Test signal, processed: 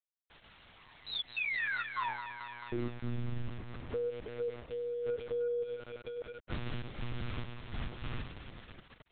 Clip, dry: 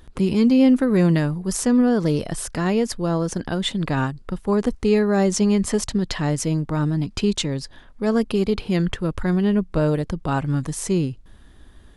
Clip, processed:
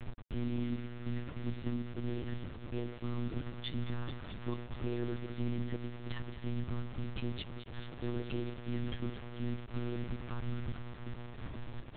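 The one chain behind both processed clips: elliptic band-stop 460–930 Hz, stop band 40 dB; bass shelf 180 Hz +9 dB; compression 10:1, threshold -28 dBFS; feedback comb 360 Hz, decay 0.19 s, harmonics odd, mix 50%; trance gate "x.xxx..x.xx" 99 bpm -60 dB; echo whose repeats swap between lows and highs 108 ms, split 940 Hz, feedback 87%, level -10 dB; saturation -29 dBFS; bit crusher 8-bit; monotone LPC vocoder at 8 kHz 120 Hz; trim +1.5 dB

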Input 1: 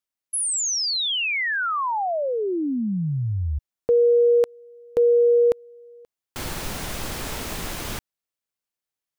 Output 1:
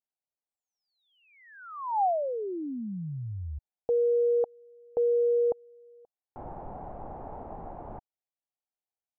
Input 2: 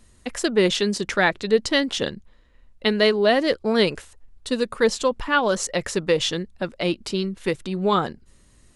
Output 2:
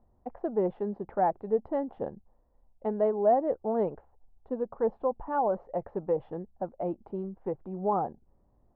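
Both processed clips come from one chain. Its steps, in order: four-pole ladder low-pass 870 Hz, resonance 65%

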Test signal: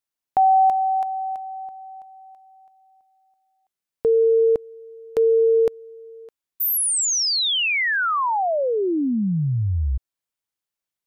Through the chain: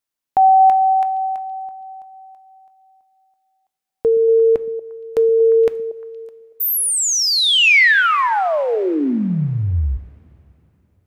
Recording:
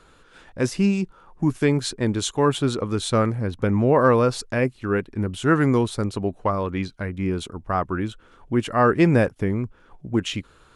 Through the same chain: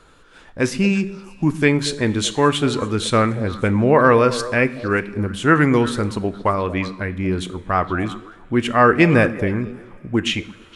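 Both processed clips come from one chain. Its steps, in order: repeats whose band climbs or falls 117 ms, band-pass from 190 Hz, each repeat 1.4 oct, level -8.5 dB; dynamic bell 2.2 kHz, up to +8 dB, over -40 dBFS, Q 1.1; two-slope reverb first 0.54 s, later 3.6 s, from -19 dB, DRR 13 dB; trim +2.5 dB

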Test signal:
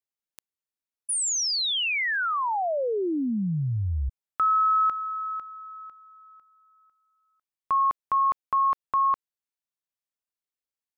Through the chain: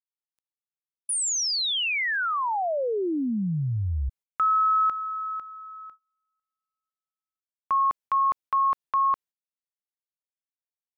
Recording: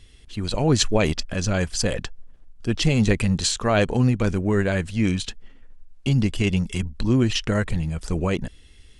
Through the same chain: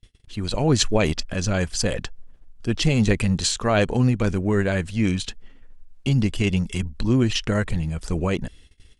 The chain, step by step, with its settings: gate -46 dBFS, range -30 dB

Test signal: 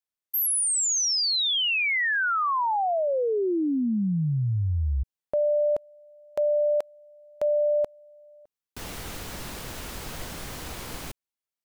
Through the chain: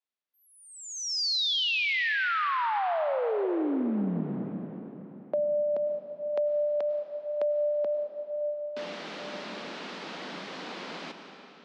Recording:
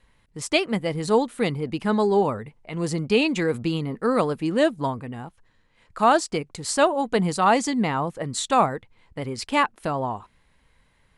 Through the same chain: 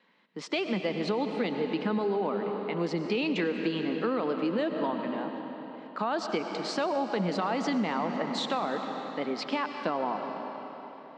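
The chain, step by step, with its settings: steep high-pass 180 Hz 48 dB/octave; peak limiter -16 dBFS; low-pass 4.6 kHz 24 dB/octave; algorithmic reverb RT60 3.9 s, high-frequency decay 0.85×, pre-delay 65 ms, DRR 6.5 dB; compression, threshold -25 dBFS

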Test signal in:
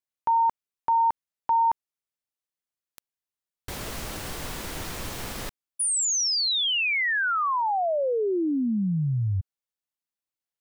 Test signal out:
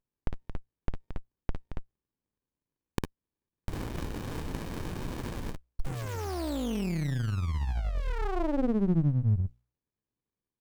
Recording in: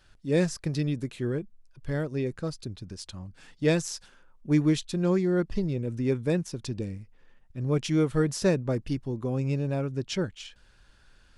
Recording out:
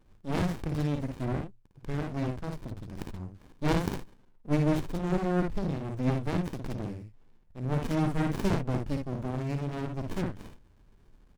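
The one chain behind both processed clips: treble shelf 4.7 kHz +6.5 dB; hum notches 60/120 Hz; early reflections 55 ms -4.5 dB, 66 ms -16 dB; sliding maximum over 65 samples

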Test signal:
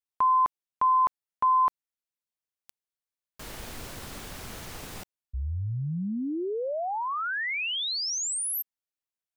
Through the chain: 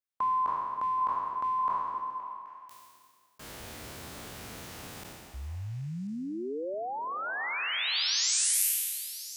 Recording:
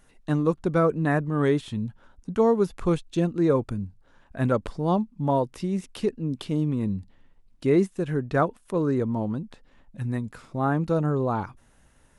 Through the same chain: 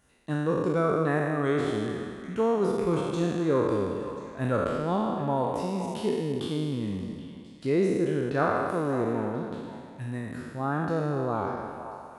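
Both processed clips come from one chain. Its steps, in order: spectral sustain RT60 1.94 s; high-pass 61 Hz; on a send: repeats whose band climbs or falls 259 ms, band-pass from 320 Hz, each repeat 1.4 oct, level -6 dB; on the sum: trim -6 dB

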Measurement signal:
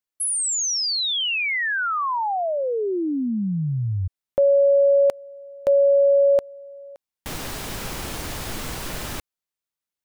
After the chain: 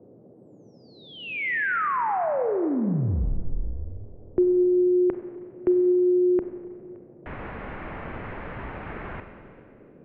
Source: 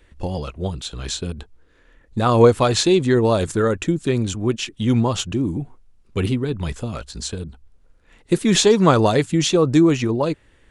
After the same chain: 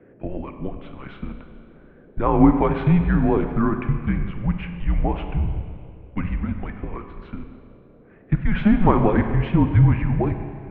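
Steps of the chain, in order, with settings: bass shelf 170 Hz +6 dB; mistuned SSB -200 Hz 180–2400 Hz; Schroeder reverb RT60 2.1 s, combs from 31 ms, DRR 6.5 dB; band noise 110–520 Hz -49 dBFS; trim -2 dB

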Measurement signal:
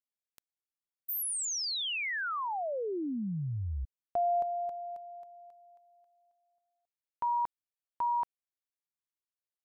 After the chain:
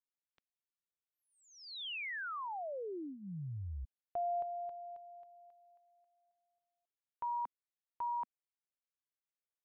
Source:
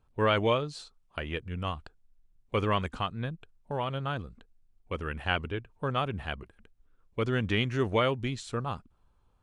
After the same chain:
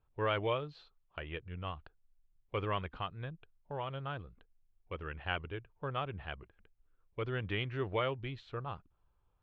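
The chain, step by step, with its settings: low-pass 3.6 kHz 24 dB/octave; peaking EQ 230 Hz -12 dB 0.31 oct; trim -7 dB

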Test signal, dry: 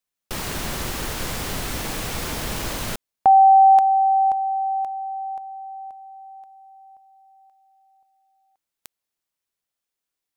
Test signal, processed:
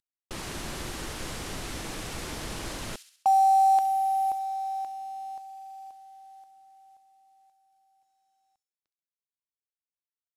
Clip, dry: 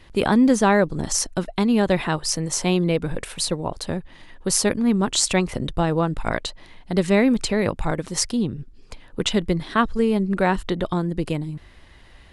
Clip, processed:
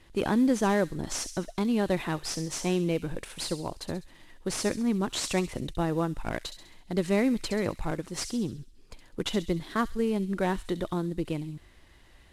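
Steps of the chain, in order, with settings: CVSD coder 64 kbps; peaking EQ 330 Hz +4 dB 0.36 oct; feedback echo behind a high-pass 67 ms, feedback 51%, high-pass 3.9 kHz, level -7 dB; trim -8 dB

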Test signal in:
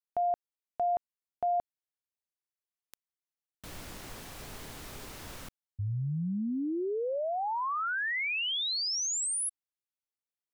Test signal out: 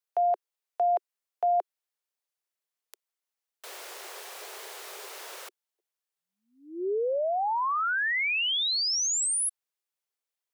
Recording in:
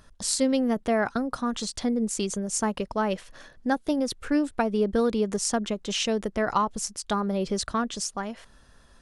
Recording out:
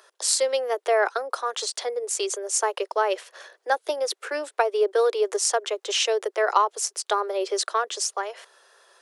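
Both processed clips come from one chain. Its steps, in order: steep high-pass 370 Hz 72 dB/octave; trim +4.5 dB

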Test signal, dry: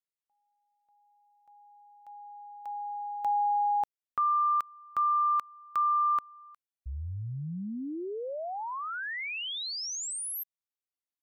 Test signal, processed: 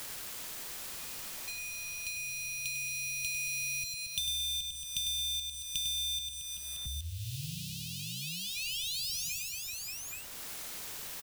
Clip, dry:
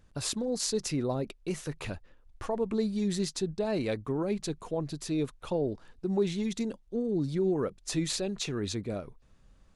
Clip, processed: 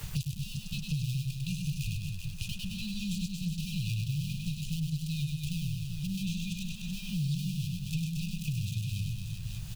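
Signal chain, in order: dead-time distortion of 0.17 ms; expander -58 dBFS; bass shelf 260 Hz +4 dB; in parallel at 0 dB: compression 6:1, threshold -38 dBFS; on the sum: brick-wall FIR band-stop 180–2400 Hz; word length cut 12-bit, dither triangular; on a send: reverse bouncing-ball echo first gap 100 ms, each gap 1.25×, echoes 5; on the sum: three bands compressed up and down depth 100%

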